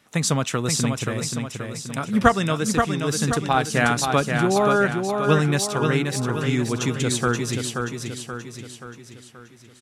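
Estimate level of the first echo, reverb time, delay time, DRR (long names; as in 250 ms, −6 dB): −5.0 dB, no reverb audible, 529 ms, no reverb audible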